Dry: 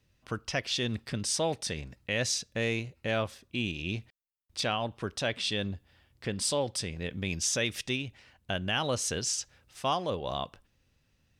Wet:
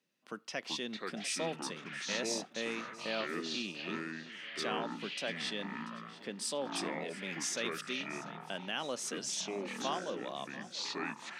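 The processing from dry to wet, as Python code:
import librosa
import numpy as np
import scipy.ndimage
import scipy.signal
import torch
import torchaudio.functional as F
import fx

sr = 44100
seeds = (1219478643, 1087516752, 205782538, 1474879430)

y = fx.echo_pitch(x, sr, ms=252, semitones=-6, count=3, db_per_echo=-3.0)
y = scipy.signal.sosfilt(scipy.signal.butter(6, 180.0, 'highpass', fs=sr, output='sos'), y)
y = fx.echo_feedback(y, sr, ms=688, feedback_pct=54, wet_db=-17.5)
y = F.gain(torch.from_numpy(y), -7.5).numpy()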